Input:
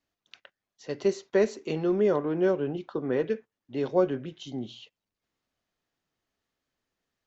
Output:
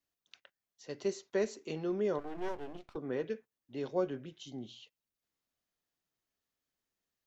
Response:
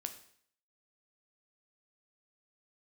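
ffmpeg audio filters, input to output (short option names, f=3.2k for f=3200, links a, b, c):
-filter_complex "[0:a]crystalizer=i=1.5:c=0,asplit=3[a][b][c];[a]afade=t=out:st=2.18:d=0.02[d];[b]aeval=exprs='max(val(0),0)':c=same,afade=t=in:st=2.18:d=0.02,afade=t=out:st=2.95:d=0.02[e];[c]afade=t=in:st=2.95:d=0.02[f];[d][e][f]amix=inputs=3:normalize=0,volume=-9dB"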